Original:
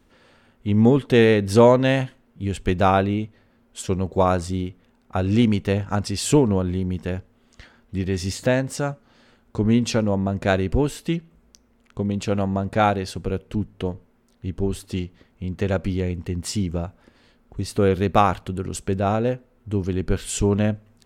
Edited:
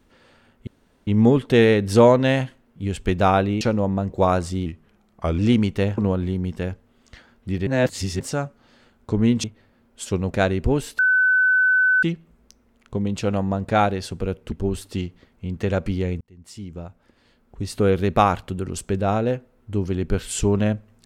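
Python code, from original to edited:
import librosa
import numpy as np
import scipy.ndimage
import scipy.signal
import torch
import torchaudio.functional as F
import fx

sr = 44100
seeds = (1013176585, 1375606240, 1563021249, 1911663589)

y = fx.edit(x, sr, fx.insert_room_tone(at_s=0.67, length_s=0.4),
    fx.swap(start_s=3.21, length_s=0.87, other_s=9.9, other_length_s=0.49),
    fx.speed_span(start_s=4.64, length_s=0.64, speed=0.88),
    fx.cut(start_s=5.87, length_s=0.57),
    fx.reverse_span(start_s=8.13, length_s=0.53),
    fx.insert_tone(at_s=11.07, length_s=1.04, hz=1510.0, db=-14.0),
    fx.cut(start_s=13.56, length_s=0.94),
    fx.fade_in_span(start_s=16.19, length_s=1.56), tone=tone)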